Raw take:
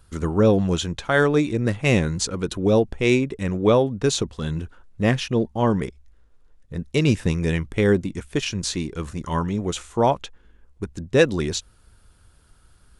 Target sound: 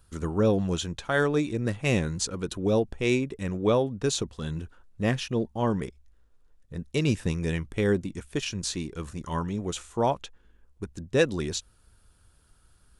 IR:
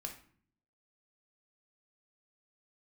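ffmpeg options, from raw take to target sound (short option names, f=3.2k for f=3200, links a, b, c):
-af "highshelf=f=7.2k:g=4.5,bandreject=f=2.1k:w=24,volume=-6dB"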